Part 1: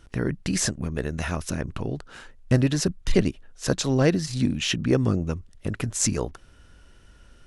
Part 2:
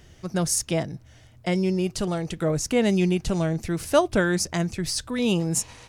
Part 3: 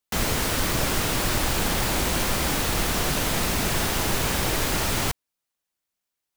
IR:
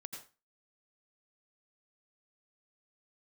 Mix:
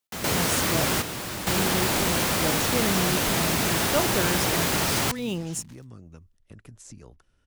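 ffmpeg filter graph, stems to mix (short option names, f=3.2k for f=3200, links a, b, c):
-filter_complex "[0:a]acrossover=split=180|790|5700[a][b][c][d];[a]acompressor=threshold=-30dB:ratio=4[e];[b]acompressor=threshold=-35dB:ratio=4[f];[c]acompressor=threshold=-41dB:ratio=4[g];[d]acompressor=threshold=-35dB:ratio=4[h];[e][f][g][h]amix=inputs=4:normalize=0,adelay=850,volume=-15dB[i];[1:a]acrusher=bits=5:mix=0:aa=0.5,volume=-7dB,asplit=2[j][k];[2:a]highpass=92,volume=1dB[l];[k]apad=whole_len=280802[m];[l][m]sidechaingate=range=-9dB:threshold=-47dB:ratio=16:detection=peak[n];[i][j][n]amix=inputs=3:normalize=0"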